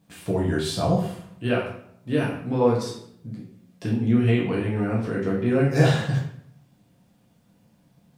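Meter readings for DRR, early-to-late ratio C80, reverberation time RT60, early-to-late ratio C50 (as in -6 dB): -4.5 dB, 8.0 dB, 0.70 s, 4.5 dB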